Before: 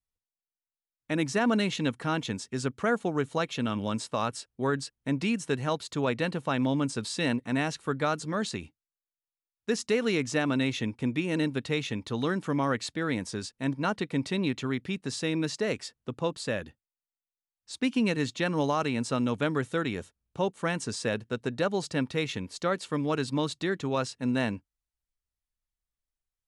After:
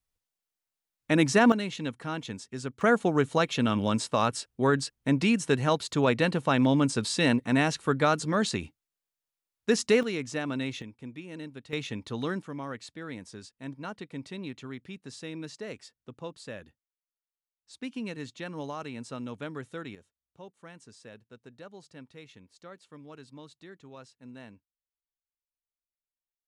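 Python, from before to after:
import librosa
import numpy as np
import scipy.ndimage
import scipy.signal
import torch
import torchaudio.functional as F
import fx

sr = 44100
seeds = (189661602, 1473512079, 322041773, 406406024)

y = fx.gain(x, sr, db=fx.steps((0.0, 5.5), (1.52, -5.0), (2.81, 4.0), (10.03, -5.0), (10.82, -13.0), (11.73, -3.0), (12.42, -10.0), (19.95, -19.0)))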